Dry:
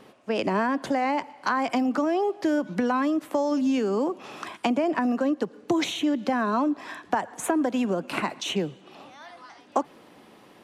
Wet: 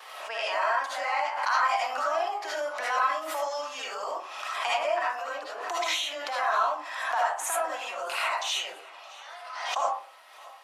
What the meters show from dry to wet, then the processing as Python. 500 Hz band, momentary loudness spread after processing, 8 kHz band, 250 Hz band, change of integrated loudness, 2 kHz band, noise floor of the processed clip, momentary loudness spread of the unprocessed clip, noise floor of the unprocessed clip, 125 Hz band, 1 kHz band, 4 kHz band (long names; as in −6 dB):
−5.0 dB, 10 LU, +3.5 dB, −30.5 dB, −2.5 dB, +3.0 dB, −48 dBFS, 6 LU, −53 dBFS, below −40 dB, +1.5 dB, +3.5 dB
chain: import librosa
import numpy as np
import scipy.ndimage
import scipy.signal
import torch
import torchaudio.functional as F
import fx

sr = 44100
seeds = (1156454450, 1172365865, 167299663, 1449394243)

p1 = fx.vibrato(x, sr, rate_hz=1.1, depth_cents=16.0)
p2 = scipy.signal.sosfilt(scipy.signal.butter(4, 790.0, 'highpass', fs=sr, output='sos'), p1)
p3 = p2 + fx.echo_feedback(p2, sr, ms=620, feedback_pct=45, wet_db=-21, dry=0)
p4 = fx.rev_freeverb(p3, sr, rt60_s=0.43, hf_ratio=0.4, predelay_ms=35, drr_db=-9.0)
p5 = fx.pre_swell(p4, sr, db_per_s=44.0)
y = p5 * 10.0 ** (-6.5 / 20.0)